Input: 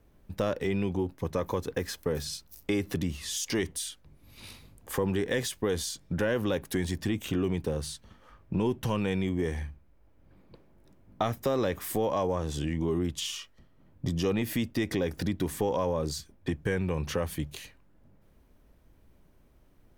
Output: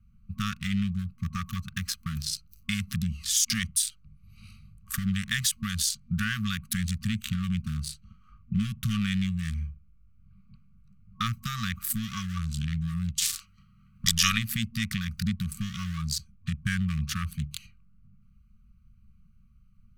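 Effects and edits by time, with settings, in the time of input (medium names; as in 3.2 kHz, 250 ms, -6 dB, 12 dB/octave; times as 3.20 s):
13.20–14.37 s: spectral peaks clipped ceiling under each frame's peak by 23 dB
whole clip: local Wiener filter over 25 samples; FFT band-reject 230–1100 Hz; treble shelf 3.2 kHz +10.5 dB; trim +3.5 dB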